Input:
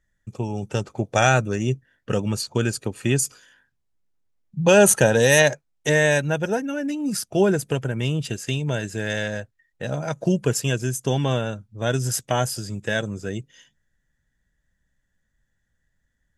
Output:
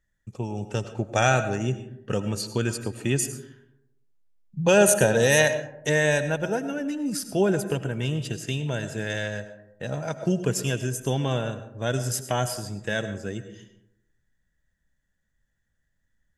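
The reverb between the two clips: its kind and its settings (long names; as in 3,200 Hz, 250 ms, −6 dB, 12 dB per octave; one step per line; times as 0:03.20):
comb and all-pass reverb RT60 0.83 s, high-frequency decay 0.35×, pre-delay 60 ms, DRR 10.5 dB
level −3.5 dB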